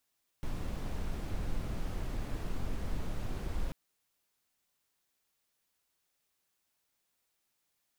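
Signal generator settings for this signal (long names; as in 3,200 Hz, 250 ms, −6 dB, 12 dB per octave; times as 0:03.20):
noise brown, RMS −34 dBFS 3.29 s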